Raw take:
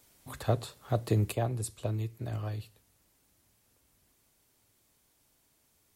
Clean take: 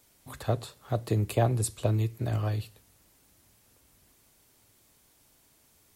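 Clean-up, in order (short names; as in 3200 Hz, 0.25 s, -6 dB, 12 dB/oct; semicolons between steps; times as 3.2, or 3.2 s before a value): gain correction +6.5 dB, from 1.32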